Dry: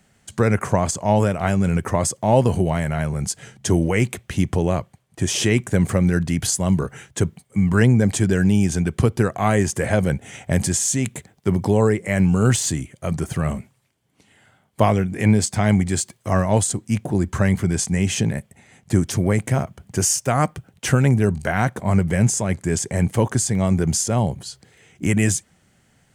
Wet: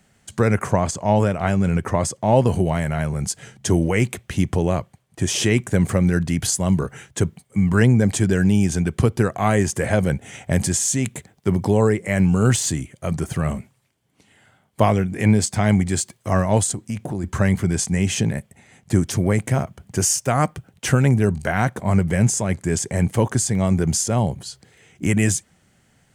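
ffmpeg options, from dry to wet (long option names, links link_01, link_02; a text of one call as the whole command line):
ffmpeg -i in.wav -filter_complex "[0:a]asettb=1/sr,asplit=3[link_01][link_02][link_03];[link_01]atrim=end=0.714[link_04];[link_02]atrim=start=0.71:end=2.47,asetpts=PTS-STARTPTS,afade=type=in:duration=0.004:curve=qsin,afade=type=out:start_time=1.756:duration=0.004:curve=qsin,highshelf=frequency=8400:gain=-8[link_05];[link_03]atrim=start=2.466[link_06];[link_04][link_05]acrossfade=duration=0.004:curve1=hsin:curve2=qsin[link_07];[link_07][link_06]acrossfade=duration=0.004:curve1=qsin:curve2=hsin,asplit=3[link_08][link_09][link_10];[link_08]afade=type=out:start_time=16.71:duration=0.02[link_11];[link_09]acompressor=threshold=-22dB:ratio=4:attack=3.2:release=140:knee=1:detection=peak,afade=type=in:start_time=16.71:duration=0.02,afade=type=out:start_time=17.23:duration=0.02[link_12];[link_10]afade=type=in:start_time=17.23:duration=0.02[link_13];[link_11][link_12][link_13]amix=inputs=3:normalize=0" out.wav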